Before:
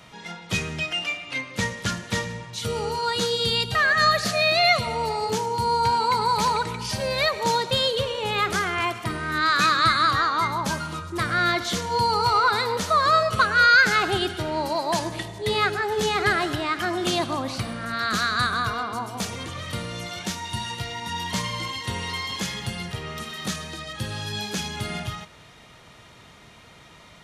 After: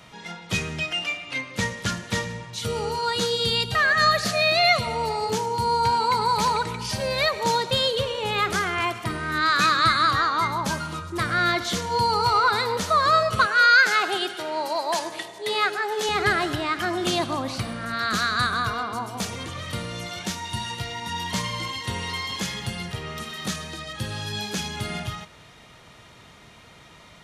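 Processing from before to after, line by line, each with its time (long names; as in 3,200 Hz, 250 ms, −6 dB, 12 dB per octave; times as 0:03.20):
0:13.46–0:16.09: high-pass filter 410 Hz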